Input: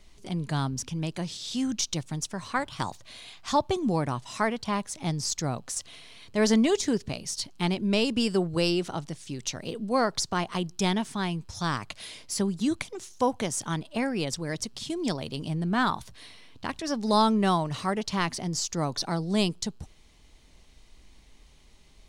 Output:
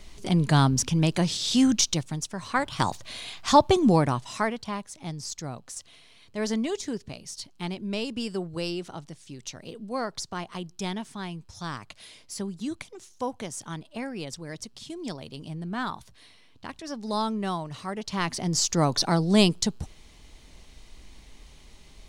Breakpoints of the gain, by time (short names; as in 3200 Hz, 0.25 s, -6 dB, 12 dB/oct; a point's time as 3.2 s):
1.66 s +8.5 dB
2.28 s -1 dB
2.9 s +7 dB
3.91 s +7 dB
4.87 s -6 dB
17.87 s -6 dB
18.63 s +6 dB